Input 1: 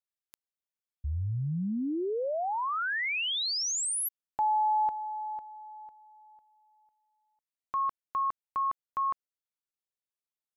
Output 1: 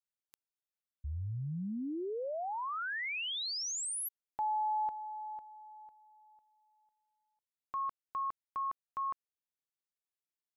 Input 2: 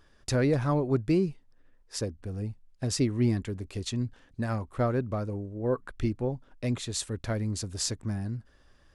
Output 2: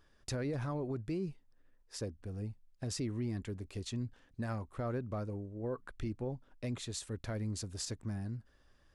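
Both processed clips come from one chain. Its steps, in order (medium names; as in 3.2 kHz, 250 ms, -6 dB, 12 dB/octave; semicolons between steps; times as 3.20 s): peak limiter -23 dBFS; trim -6.5 dB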